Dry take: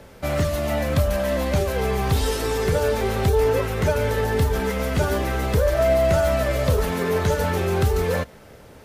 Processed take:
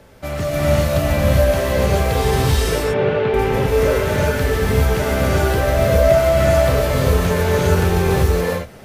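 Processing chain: 2.52–3.34 Chebyshev band-pass 120–3000 Hz, order 3; non-linear reverb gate 0.43 s rising, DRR -6.5 dB; gain -2 dB

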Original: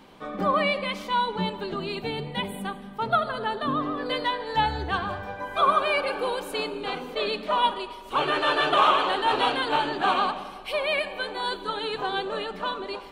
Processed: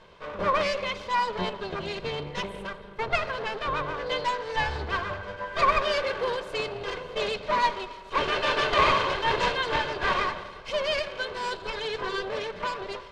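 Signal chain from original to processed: minimum comb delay 1.9 ms; LPF 5100 Hz 12 dB/oct

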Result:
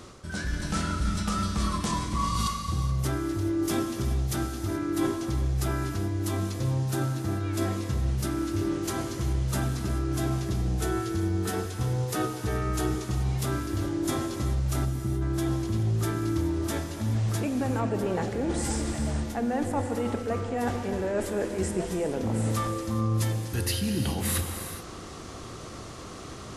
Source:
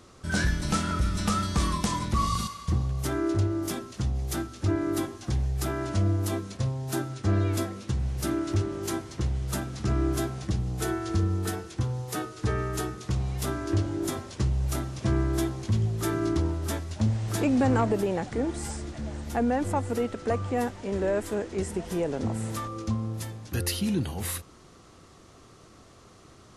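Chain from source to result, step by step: reverse; compressor 12:1, threshold -37 dBFS, peak gain reduction 17.5 dB; reverse; spectral delete 14.85–15.21, 470–11000 Hz; AGC gain up to 4 dB; non-linear reverb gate 0.45 s flat, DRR 5 dB; gain +7 dB

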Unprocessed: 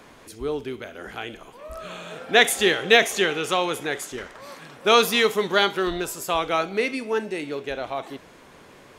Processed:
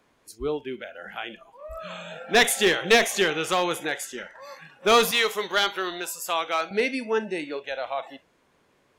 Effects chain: spectral noise reduction 16 dB; 5.11–6.71 HPF 780 Hz 6 dB/oct; one-sided clip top -15.5 dBFS

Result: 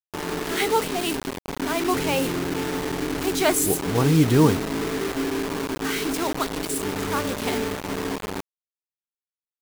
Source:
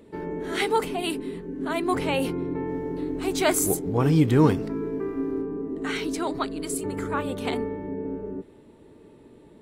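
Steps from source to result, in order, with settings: bit-crush 5-bit; gain +1.5 dB

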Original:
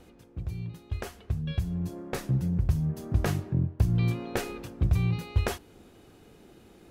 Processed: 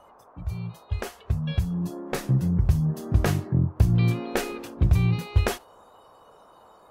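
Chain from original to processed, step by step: spectral noise reduction 15 dB; band noise 430–1200 Hz -58 dBFS; gain +4.5 dB

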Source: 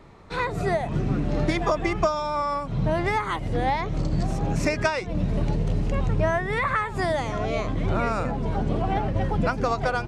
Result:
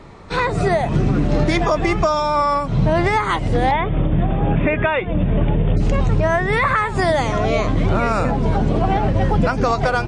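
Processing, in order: 3.71–5.77 Chebyshev low-pass 3600 Hz, order 10; maximiser +15.5 dB; gain -6.5 dB; MP3 40 kbps 22050 Hz

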